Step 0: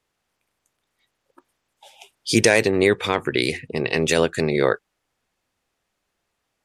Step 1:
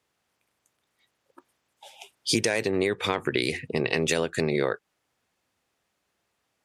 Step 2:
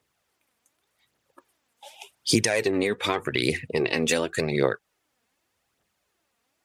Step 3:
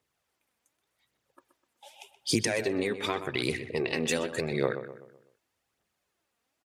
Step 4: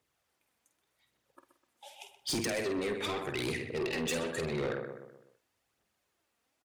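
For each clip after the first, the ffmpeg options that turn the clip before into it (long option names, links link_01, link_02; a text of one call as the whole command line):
ffmpeg -i in.wav -af "highpass=69,acompressor=threshold=-20dB:ratio=12" out.wav
ffmpeg -i in.wav -af "highshelf=frequency=11000:gain=5,aphaser=in_gain=1:out_gain=1:delay=4.5:decay=0.48:speed=0.86:type=triangular" out.wav
ffmpeg -i in.wav -filter_complex "[0:a]asplit=2[link_01][link_02];[link_02]adelay=126,lowpass=frequency=2200:poles=1,volume=-10dB,asplit=2[link_03][link_04];[link_04]adelay=126,lowpass=frequency=2200:poles=1,volume=0.45,asplit=2[link_05][link_06];[link_06]adelay=126,lowpass=frequency=2200:poles=1,volume=0.45,asplit=2[link_07][link_08];[link_08]adelay=126,lowpass=frequency=2200:poles=1,volume=0.45,asplit=2[link_09][link_10];[link_10]adelay=126,lowpass=frequency=2200:poles=1,volume=0.45[link_11];[link_01][link_03][link_05][link_07][link_09][link_11]amix=inputs=6:normalize=0,volume=-5.5dB" out.wav
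ffmpeg -i in.wav -filter_complex "[0:a]asplit=2[link_01][link_02];[link_02]adelay=49,volume=-9dB[link_03];[link_01][link_03]amix=inputs=2:normalize=0,asoftclip=type=tanh:threshold=-28.5dB" out.wav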